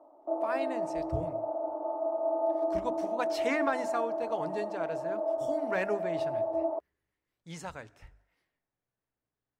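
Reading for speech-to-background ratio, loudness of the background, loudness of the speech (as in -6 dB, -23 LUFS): -3.5 dB, -33.0 LUFS, -36.5 LUFS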